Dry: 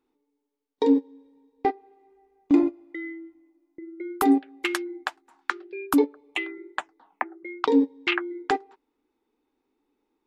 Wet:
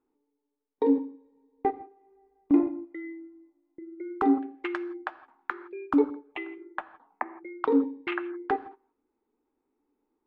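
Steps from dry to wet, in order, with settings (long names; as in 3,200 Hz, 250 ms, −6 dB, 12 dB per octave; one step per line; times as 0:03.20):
low-pass filter 1,600 Hz 12 dB per octave
on a send: convolution reverb, pre-delay 5 ms, DRR 13.5 dB
on the sum: level −2.5 dB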